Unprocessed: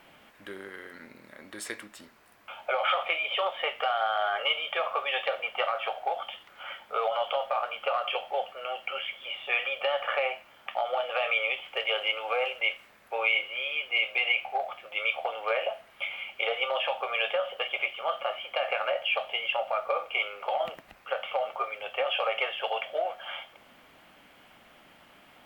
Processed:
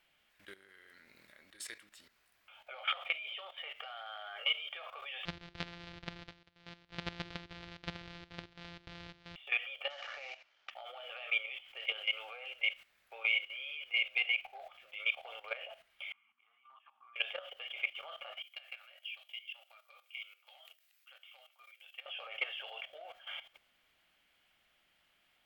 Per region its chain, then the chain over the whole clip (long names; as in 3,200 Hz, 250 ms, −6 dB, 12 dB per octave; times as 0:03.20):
0:05.25–0:09.36: samples sorted by size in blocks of 256 samples + low-pass filter 4,200 Hz 24 dB per octave + mains-hum notches 50/100/150/200/250/300/350/400 Hz
0:09.90–0:10.71: variable-slope delta modulation 32 kbit/s + bass and treble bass −12 dB, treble −8 dB
0:16.12–0:17.16: downward compressor 4 to 1, threshold −32 dBFS + pair of resonant band-passes 520 Hz, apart 2.2 octaves
0:18.42–0:22.06: first difference + hum removal 327.5 Hz, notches 27
whole clip: parametric band 980 Hz −7.5 dB 1.1 octaves; output level in coarse steps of 14 dB; octave-band graphic EQ 125/250/500/4,000 Hz −6/−10/−6/+3 dB; level −2.5 dB